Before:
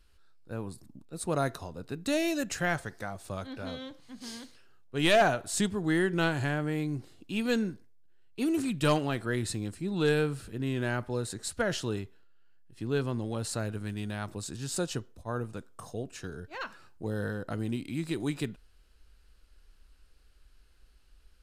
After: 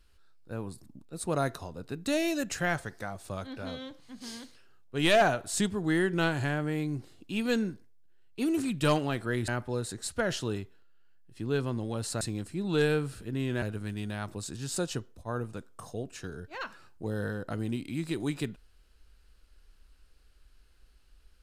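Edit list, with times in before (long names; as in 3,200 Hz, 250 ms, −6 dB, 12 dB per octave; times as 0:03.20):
0:09.48–0:10.89: move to 0:13.62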